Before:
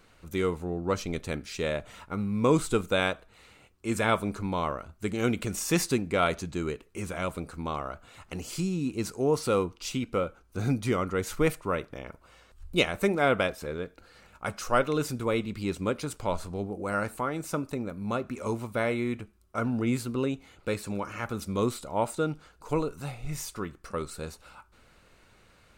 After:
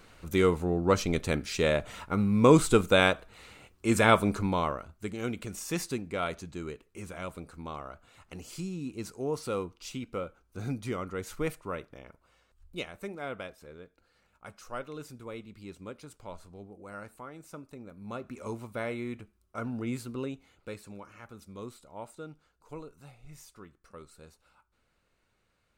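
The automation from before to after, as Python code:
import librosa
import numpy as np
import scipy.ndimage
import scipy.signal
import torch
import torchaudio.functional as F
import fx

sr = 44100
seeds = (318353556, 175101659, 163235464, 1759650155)

y = fx.gain(x, sr, db=fx.line((4.35, 4.0), (5.21, -7.0), (11.75, -7.0), (12.98, -14.0), (17.71, -14.0), (18.32, -6.5), (20.21, -6.5), (21.23, -15.0)))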